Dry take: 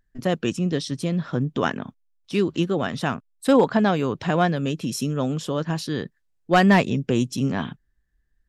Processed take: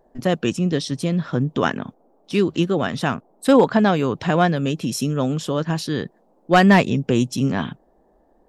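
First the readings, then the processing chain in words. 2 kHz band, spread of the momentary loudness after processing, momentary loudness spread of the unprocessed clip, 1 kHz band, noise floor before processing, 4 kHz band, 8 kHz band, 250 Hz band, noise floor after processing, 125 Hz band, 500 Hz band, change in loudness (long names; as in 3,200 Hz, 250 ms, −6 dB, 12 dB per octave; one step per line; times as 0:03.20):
+3.0 dB, 10 LU, 10 LU, +3.0 dB, −69 dBFS, +3.0 dB, +3.0 dB, +3.0 dB, −59 dBFS, +3.0 dB, +3.0 dB, +3.0 dB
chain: noise in a band 180–790 Hz −63 dBFS
level +3 dB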